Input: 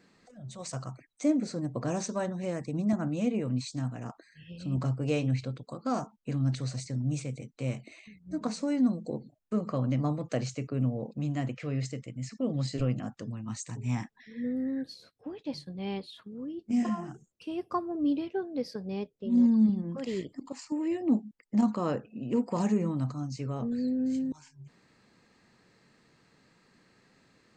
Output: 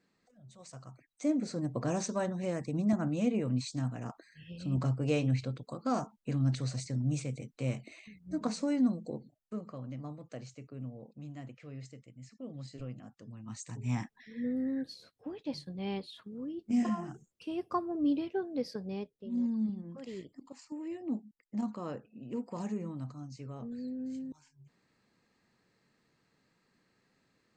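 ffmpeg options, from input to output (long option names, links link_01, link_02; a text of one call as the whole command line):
ffmpeg -i in.wav -af "volume=11dB,afade=type=in:start_time=0.81:duration=0.83:silence=0.281838,afade=type=out:start_time=8.62:duration=1.14:silence=0.237137,afade=type=in:start_time=13.19:duration=0.79:silence=0.251189,afade=type=out:start_time=18.75:duration=0.56:silence=0.398107" out.wav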